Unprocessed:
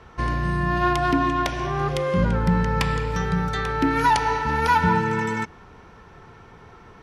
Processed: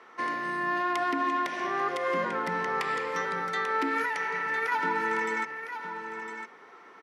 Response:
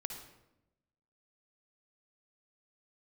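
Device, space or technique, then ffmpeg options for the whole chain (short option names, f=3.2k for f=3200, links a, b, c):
laptop speaker: -filter_complex "[0:a]highpass=f=270:w=0.5412,highpass=f=270:w=1.3066,equalizer=f=1.2k:t=o:w=0.4:g=5.5,equalizer=f=2k:t=o:w=0.33:g=9,alimiter=limit=-14dB:level=0:latency=1:release=90,asettb=1/sr,asplit=3[a][b][c];[a]atrim=end=4.024[d];[b]atrim=start=4.02:end=4.72,asetpts=PTS-STARTPTS,afade=t=in:d=0.004:c=qsin,afade=t=out:st=0.696:d=0.004:c=qsin,equalizer=f=125:t=o:w=1:g=5,equalizer=f=250:t=o:w=1:g=-10,equalizer=f=500:t=o:w=1:g=3,equalizer=f=1k:t=o:w=1:g=-9,equalizer=f=2k:t=o:w=1:g=6,equalizer=f=4k:t=o:w=1:g=-7,equalizer=f=8k:t=o:w=1:g=-4[e];[c]atrim=start=4.716[f];[d][e]acrossfade=d=0.004:c1=hsin:c2=qsin[g];[g][f]acrossfade=d=0.004:c1=qsin:c2=hsin,aecho=1:1:1006:0.355,volume=-5.5dB"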